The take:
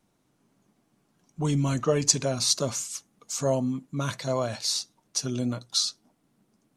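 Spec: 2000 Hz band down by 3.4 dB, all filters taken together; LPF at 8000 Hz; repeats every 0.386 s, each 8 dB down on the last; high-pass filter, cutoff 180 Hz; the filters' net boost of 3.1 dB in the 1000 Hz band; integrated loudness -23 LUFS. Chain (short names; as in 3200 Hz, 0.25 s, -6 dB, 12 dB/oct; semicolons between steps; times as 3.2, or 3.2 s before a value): HPF 180 Hz; LPF 8000 Hz; bell 1000 Hz +6 dB; bell 2000 Hz -7.5 dB; feedback echo 0.386 s, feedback 40%, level -8 dB; gain +4.5 dB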